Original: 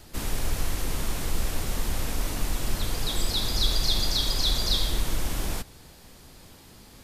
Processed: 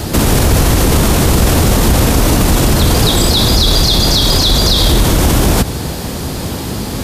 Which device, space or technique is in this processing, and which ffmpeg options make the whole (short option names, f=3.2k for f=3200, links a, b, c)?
mastering chain: -af "highpass=59,equalizer=f=2.1k:t=o:w=0.77:g=-2,acompressor=threshold=-30dB:ratio=2.5,tiltshelf=f=780:g=3.5,asoftclip=type=hard:threshold=-22.5dB,alimiter=level_in=30.5dB:limit=-1dB:release=50:level=0:latency=1,volume=-1dB"